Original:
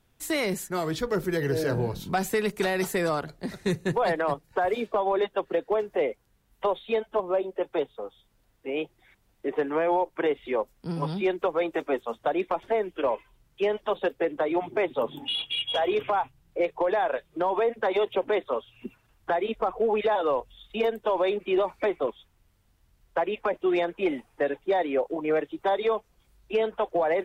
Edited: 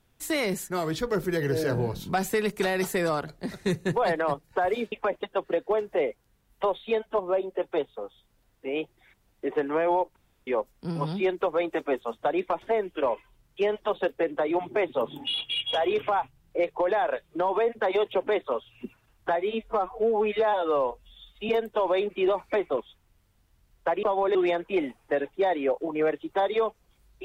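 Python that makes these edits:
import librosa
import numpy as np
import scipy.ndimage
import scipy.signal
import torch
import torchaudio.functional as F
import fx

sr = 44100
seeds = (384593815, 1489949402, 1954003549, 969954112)

y = fx.edit(x, sr, fx.swap(start_s=4.92, length_s=0.32, other_s=23.33, other_length_s=0.31),
    fx.room_tone_fill(start_s=10.17, length_s=0.31),
    fx.stretch_span(start_s=19.37, length_s=1.42, factor=1.5), tone=tone)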